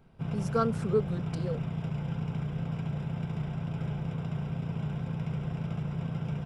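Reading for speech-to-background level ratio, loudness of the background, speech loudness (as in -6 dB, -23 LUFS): 2.0 dB, -34.5 LUFS, -32.5 LUFS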